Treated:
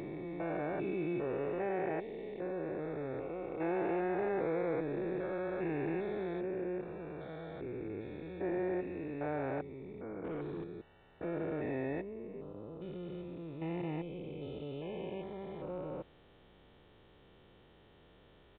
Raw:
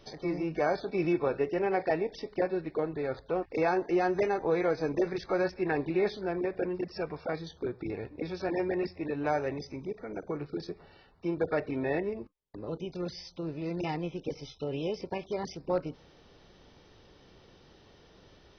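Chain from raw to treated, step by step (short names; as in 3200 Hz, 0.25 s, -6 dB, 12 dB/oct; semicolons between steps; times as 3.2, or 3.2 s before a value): stepped spectrum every 0.4 s; 10.24–10.64 sample leveller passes 2; downsampling 8000 Hz; gain -2.5 dB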